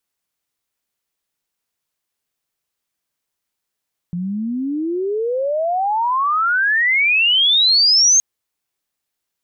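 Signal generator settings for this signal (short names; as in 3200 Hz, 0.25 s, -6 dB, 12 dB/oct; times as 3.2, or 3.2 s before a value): chirp logarithmic 170 Hz -> 6500 Hz -20.5 dBFS -> -9 dBFS 4.07 s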